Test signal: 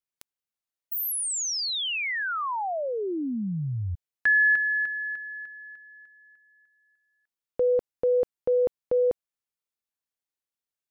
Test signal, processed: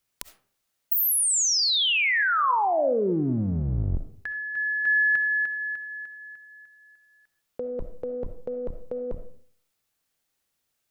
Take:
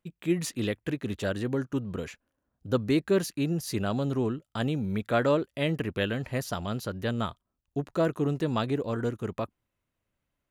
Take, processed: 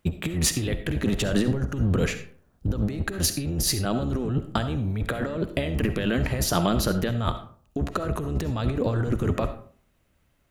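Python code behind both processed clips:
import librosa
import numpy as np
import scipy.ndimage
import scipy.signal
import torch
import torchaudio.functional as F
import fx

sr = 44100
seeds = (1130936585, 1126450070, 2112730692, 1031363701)

y = fx.octave_divider(x, sr, octaves=1, level_db=-1.0)
y = fx.notch(y, sr, hz=1000.0, q=22.0)
y = fx.over_compress(y, sr, threshold_db=-33.0, ratio=-1.0)
y = fx.rev_freeverb(y, sr, rt60_s=0.5, hf_ratio=0.55, predelay_ms=25, drr_db=9.5)
y = y * librosa.db_to_amplitude(7.5)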